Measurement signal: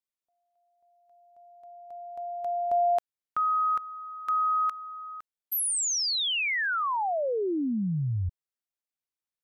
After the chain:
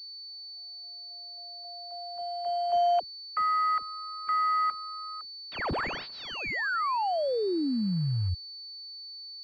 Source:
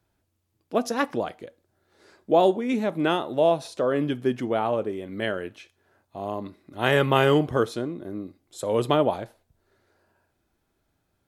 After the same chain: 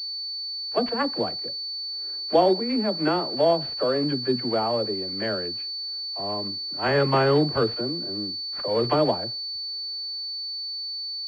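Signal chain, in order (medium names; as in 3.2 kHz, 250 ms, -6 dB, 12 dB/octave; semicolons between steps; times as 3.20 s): block-companded coder 5-bit; phase dispersion lows, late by 55 ms, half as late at 360 Hz; class-D stage that switches slowly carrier 4.5 kHz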